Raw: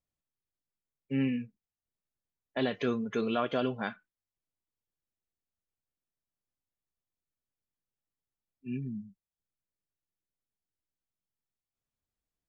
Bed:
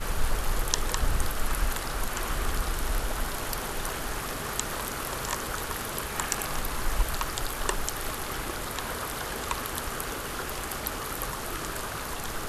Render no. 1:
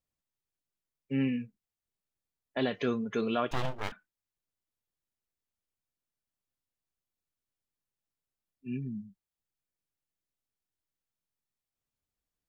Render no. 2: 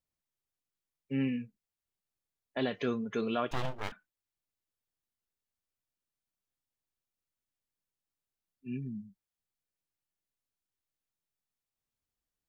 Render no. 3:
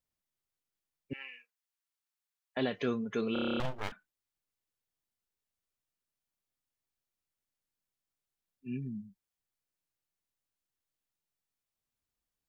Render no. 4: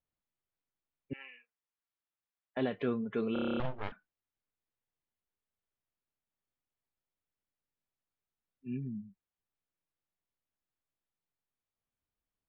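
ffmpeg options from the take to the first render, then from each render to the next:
-filter_complex "[0:a]asettb=1/sr,asplit=3[a][b][c];[a]atrim=end=3.514[d];[b]atrim=start=3.51:end=3.92,asetpts=PTS-STARTPTS,afade=t=in:d=0.004:c=qsin,afade=t=out:st=0.406:d=0.004:c=qsin,aeval=exprs='abs(val(0))':c=same[e];[c]atrim=start=3.916[f];[d][e]acrossfade=d=0.004:c1=hsin:c2=qsin[g];[g][f]acrossfade=d=0.004:c1=qsin:c2=hsin"
-af "volume=-2dB"
-filter_complex "[0:a]asettb=1/sr,asplit=3[a][b][c];[a]atrim=end=1.134[d];[b]atrim=start=1.13:end=2.57,asetpts=PTS-STARTPTS,afade=t=in:d=0.004:c=qsin,afade=t=out:st=1.436:d=0.004:c=qsin,highpass=f=880:w=0.5412,highpass=f=880:w=1.3066[e];[c]atrim=start=2.566[f];[d][e]acrossfade=d=0.004:c1=hsin:c2=qsin[g];[g][f]acrossfade=d=0.004:c1=qsin:c2=hsin,asplit=10[h][i][j][k][l][m][n][o][p][q];[h]atrim=end=3.362[r];[i]atrim=start=3.328:end=3.362[s];[j]atrim=start=3.328:end=3.362[t];[k]atrim=start=3.328:end=3.362[u];[l]atrim=start=3.328:end=3.362[v];[m]atrim=start=3.328:end=3.362[w];[n]atrim=start=3.328:end=3.362[x];[o]atrim=start=3.328:end=3.362[y];[p]atrim=start=3.328:end=3.362[z];[q]atrim=start=3.598[aa];[r][s]acrossfade=d=0.004:c1=hsin:c2=hsin[ab];[ab][t]acrossfade=d=0.004:c1=hsin:c2=hsin[ac];[ac][u]acrossfade=d=0.004:c1=hsin:c2=hsin[ad];[ad][v]acrossfade=d=0.004:c1=hsin:c2=hsin[ae];[ae][w]acrossfade=d=0.004:c1=hsin:c2=hsin[af];[af][x]acrossfade=d=0.004:c1=hsin:c2=hsin[ag];[ag][y]acrossfade=d=0.004:c1=hsin:c2=hsin[ah];[ah][z]acrossfade=d=0.004:c1=hsin:c2=hsin[ai];[ai][aa]acrossfade=d=0.004:c1=hsin:c2=hsin"
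-af "lowpass=f=3.9k:w=0.5412,lowpass=f=3.9k:w=1.3066,highshelf=f=2.5k:g=-9.5"

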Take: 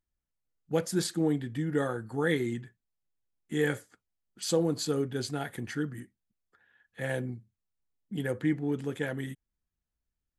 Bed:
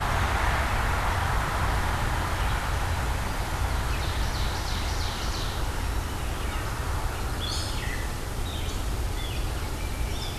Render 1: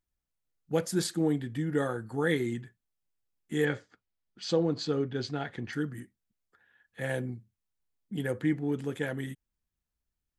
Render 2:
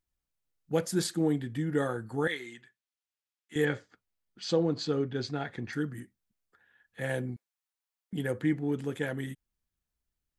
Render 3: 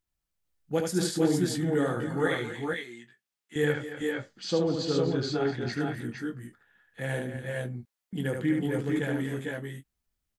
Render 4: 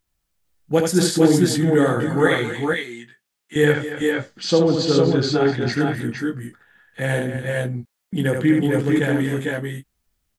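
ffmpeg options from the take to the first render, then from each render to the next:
-filter_complex "[0:a]asettb=1/sr,asplit=3[a][b][c];[a]atrim=end=3.654[d];[b]atrim=start=3.65:end=5.73,asetpts=PTS-STARTPTS,afade=t=in:d=0.004:c=qsin,afade=t=out:st=2.076:d=0.004:c=qsin,lowpass=f=5.3k:w=0.5412,lowpass=f=5.3k:w=1.3066[e];[c]atrim=start=5.726[f];[d][e]acrossfade=d=0.004:c1=hsin:c2=qsin[g];[g][f]acrossfade=d=0.004:c1=qsin:c2=hsin"
-filter_complex "[0:a]asettb=1/sr,asplit=3[a][b][c];[a]atrim=end=2.274[d];[b]atrim=start=2.27:end=3.56,asetpts=PTS-STARTPTS,afade=t=in:d=0.004:c=qsin,afade=t=out:st=1.286:d=0.004:c=qsin,bandpass=f=3k:t=q:w=0.56[e];[c]atrim=start=3.556[f];[d][e]acrossfade=d=0.004:c1=hsin:c2=qsin[g];[g][f]acrossfade=d=0.004:c1=qsin:c2=hsin,asettb=1/sr,asplit=3[h][i][j];[h]atrim=end=5.204[k];[i]atrim=start=5.2:end=5.76,asetpts=PTS-STARTPTS,afade=t=in:d=0.004:c=qsin,afade=t=out:st=0.556:d=0.004:c=qsin,bandreject=f=3k:w=11[l];[j]atrim=start=5.756[m];[k][l]acrossfade=d=0.004:c1=hsin:c2=qsin[n];[n][m]acrossfade=d=0.004:c1=qsin:c2=hsin,asettb=1/sr,asplit=3[o][p][q];[o]atrim=end=7.364[r];[p]atrim=start=7.36:end=8.13,asetpts=PTS-STARTPTS,afade=t=in:d=0.004:c=qsin,afade=t=out:st=0.766:d=0.004:c=qsin,highpass=f=690:w=0.5412,highpass=f=690:w=1.3066[s];[q]atrim=start=8.126[t];[r][s]acrossfade=d=0.004:c1=hsin:c2=qsin[u];[u][t]acrossfade=d=0.004:c1=qsin:c2=hsin"
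-filter_complex "[0:a]asplit=2[a][b];[b]adelay=22,volume=-11.5dB[c];[a][c]amix=inputs=2:normalize=0,aecho=1:1:74|246|276|450|467:0.596|0.237|0.178|0.562|0.596"
-af "volume=10dB"

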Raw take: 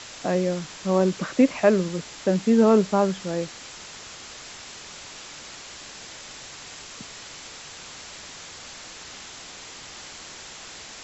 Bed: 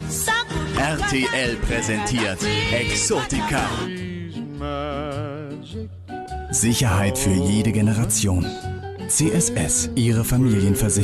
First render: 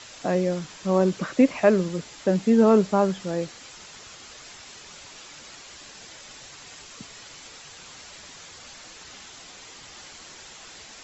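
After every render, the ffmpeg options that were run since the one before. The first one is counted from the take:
-af "afftdn=nr=6:nf=-42"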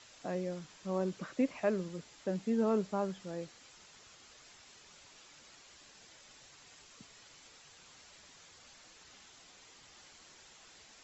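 -af "volume=-13.5dB"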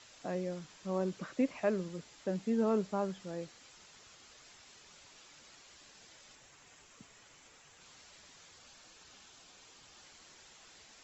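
-filter_complex "[0:a]asettb=1/sr,asplit=3[a][b][c];[a]atrim=end=6.354[d];[b]atrim=start=6.35:end=7.81,asetpts=PTS-STARTPTS,afade=t=in:d=0.004:c=qsin,afade=t=out:st=1.456:d=0.004:c=qsin,equalizer=f=4.4k:t=o:w=0.85:g=-6[e];[c]atrim=start=7.806[f];[d][e]acrossfade=d=0.004:c1=hsin:c2=qsin[g];[g][f]acrossfade=d=0.004:c1=qsin:c2=hsin,asettb=1/sr,asplit=3[h][i][j];[h]atrim=end=8.604[k];[i]atrim=start=8.6:end=10.03,asetpts=PTS-STARTPTS,afade=t=in:d=0.004:c=qsin,afade=t=out:st=1.426:d=0.004:c=qsin,bandreject=f=2k:w=12[l];[j]atrim=start=10.026[m];[k][l]acrossfade=d=0.004:c1=hsin:c2=qsin[n];[n][m]acrossfade=d=0.004:c1=qsin:c2=hsin"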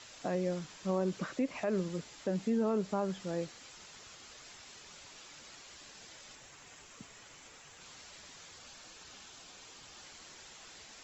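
-af "acontrast=27,alimiter=limit=-23.5dB:level=0:latency=1:release=123"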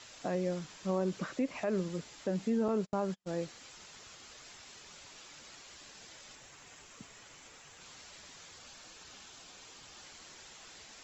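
-filter_complex "[0:a]asettb=1/sr,asplit=3[a][b][c];[a]atrim=end=2.684[d];[b]atrim=start=2.68:end=3.38,asetpts=PTS-STARTPTS,afade=t=in:d=0.004:c=qsin,afade=t=out:st=0.696:d=0.004:c=qsin,agate=range=-40dB:threshold=-39dB:ratio=16:release=100:detection=peak[e];[c]atrim=start=3.376[f];[d][e]acrossfade=d=0.004:c1=hsin:c2=qsin[g];[g][f]acrossfade=d=0.004:c1=qsin:c2=hsin"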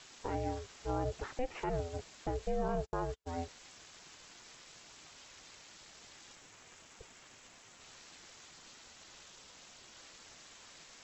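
-af "aeval=exprs='val(0)*sin(2*PI*250*n/s)':c=same"

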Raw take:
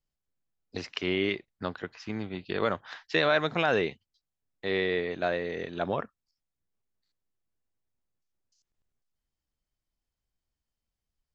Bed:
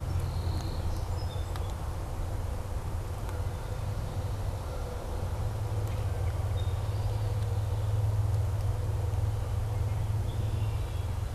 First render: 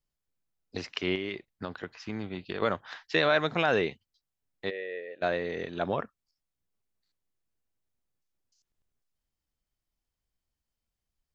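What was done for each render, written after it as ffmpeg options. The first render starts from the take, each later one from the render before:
-filter_complex "[0:a]asettb=1/sr,asplit=3[a][b][c];[a]atrim=end=1.154[d];[b]atrim=start=1.15:end=2.62,asetpts=PTS-STARTPTS,afade=t=in:d=0.004:c=qsin,afade=t=out:st=1.466:d=0.004:c=qsin,acompressor=threshold=-29dB:ratio=6:attack=3.2:release=140:knee=1:detection=peak[e];[c]atrim=start=2.616[f];[d][e]acrossfade=d=0.004:c1=hsin:c2=qsin[g];[g][f]acrossfade=d=0.004:c1=qsin:c2=hsin,asplit=3[h][i][j];[h]afade=t=out:st=4.69:d=0.02[k];[i]asplit=3[l][m][n];[l]bandpass=f=530:t=q:w=8,volume=0dB[o];[m]bandpass=f=1.84k:t=q:w=8,volume=-6dB[p];[n]bandpass=f=2.48k:t=q:w=8,volume=-9dB[q];[o][p][q]amix=inputs=3:normalize=0,afade=t=in:st=4.69:d=0.02,afade=t=out:st=5.21:d=0.02[r];[j]afade=t=in:st=5.21:d=0.02[s];[k][r][s]amix=inputs=3:normalize=0"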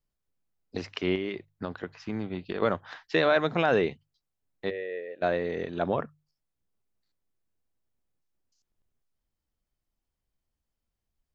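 -af "tiltshelf=f=1.4k:g=3.5,bandreject=f=50:t=h:w=6,bandreject=f=100:t=h:w=6,bandreject=f=150:t=h:w=6"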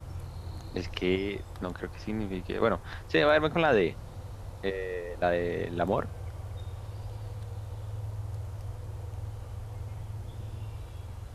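-filter_complex "[1:a]volume=-8.5dB[a];[0:a][a]amix=inputs=2:normalize=0"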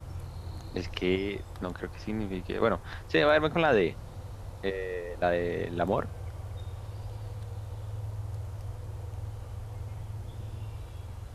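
-af anull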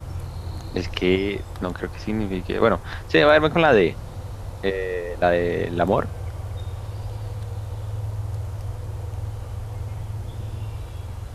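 -af "volume=8dB"

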